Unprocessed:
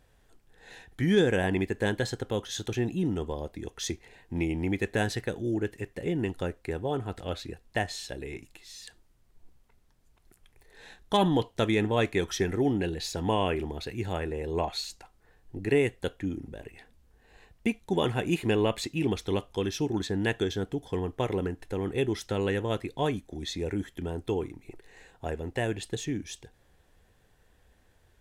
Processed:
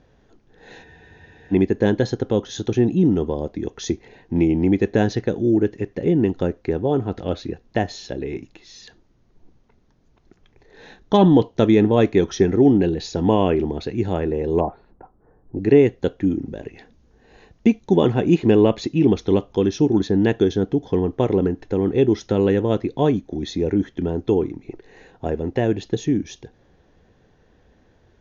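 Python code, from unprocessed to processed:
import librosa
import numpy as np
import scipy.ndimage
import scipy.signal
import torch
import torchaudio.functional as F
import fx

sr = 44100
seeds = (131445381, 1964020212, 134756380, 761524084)

y = fx.spec_freeze(x, sr, seeds[0], at_s=0.86, hold_s=0.67)
y = fx.lowpass(y, sr, hz=1300.0, slope=24, at=(14.6, 15.57))
y = fx.high_shelf(y, sr, hz=6600.0, db=11.0, at=(16.47, 17.94))
y = fx.dynamic_eq(y, sr, hz=1900.0, q=0.85, threshold_db=-43.0, ratio=4.0, max_db=-3)
y = scipy.signal.sosfilt(scipy.signal.cheby1(8, 1.0, 6700.0, 'lowpass', fs=sr, output='sos'), y)
y = fx.peak_eq(y, sr, hz=260.0, db=11.0, octaves=2.9)
y = F.gain(torch.from_numpy(y), 3.0).numpy()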